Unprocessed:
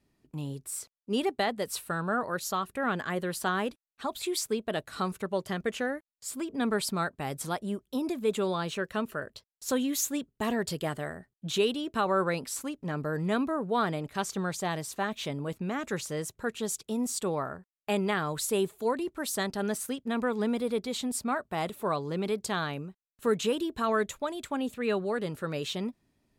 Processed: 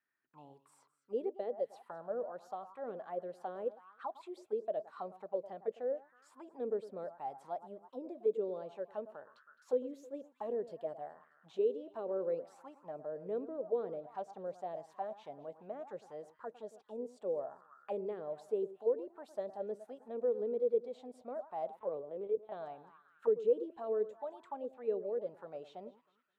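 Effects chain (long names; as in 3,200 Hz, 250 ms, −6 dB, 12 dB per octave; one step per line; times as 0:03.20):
on a send: delay that swaps between a low-pass and a high-pass 106 ms, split 1,600 Hz, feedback 58%, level −14 dB
0:21.79–0:22.52: on the sum: linear-prediction vocoder at 8 kHz pitch kept
dynamic equaliser 1,300 Hz, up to −7 dB, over −43 dBFS, Q 0.75
envelope filter 480–1,600 Hz, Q 6.7, down, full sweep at −27 dBFS
level +3 dB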